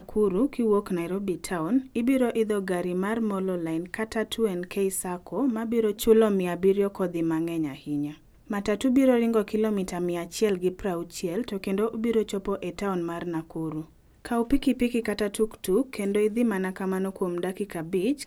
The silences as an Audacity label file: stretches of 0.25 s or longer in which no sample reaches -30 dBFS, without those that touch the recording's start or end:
8.100000	8.510000	silence
13.810000	14.250000	silence